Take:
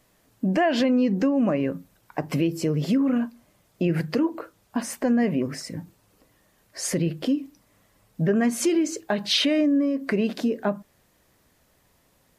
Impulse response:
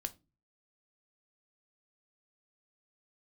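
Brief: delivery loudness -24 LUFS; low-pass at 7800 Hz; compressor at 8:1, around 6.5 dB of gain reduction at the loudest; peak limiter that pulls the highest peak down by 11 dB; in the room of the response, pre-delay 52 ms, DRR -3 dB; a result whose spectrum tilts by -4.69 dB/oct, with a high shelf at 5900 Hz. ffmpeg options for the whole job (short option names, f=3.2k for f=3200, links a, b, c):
-filter_complex "[0:a]lowpass=7.8k,highshelf=f=5.9k:g=9,acompressor=threshold=-24dB:ratio=8,alimiter=limit=-23.5dB:level=0:latency=1,asplit=2[a][b];[1:a]atrim=start_sample=2205,adelay=52[c];[b][c]afir=irnorm=-1:irlink=0,volume=4.5dB[d];[a][d]amix=inputs=2:normalize=0,volume=3.5dB"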